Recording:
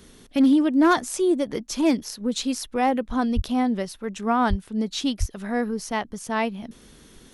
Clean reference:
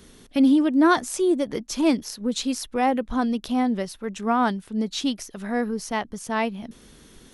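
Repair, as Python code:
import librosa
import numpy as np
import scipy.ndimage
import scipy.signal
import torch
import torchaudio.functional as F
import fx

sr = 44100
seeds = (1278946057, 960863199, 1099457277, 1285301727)

y = fx.fix_declip(x, sr, threshold_db=-12.0)
y = fx.highpass(y, sr, hz=140.0, slope=24, at=(3.35, 3.47), fade=0.02)
y = fx.highpass(y, sr, hz=140.0, slope=24, at=(4.49, 4.61), fade=0.02)
y = fx.highpass(y, sr, hz=140.0, slope=24, at=(5.19, 5.31), fade=0.02)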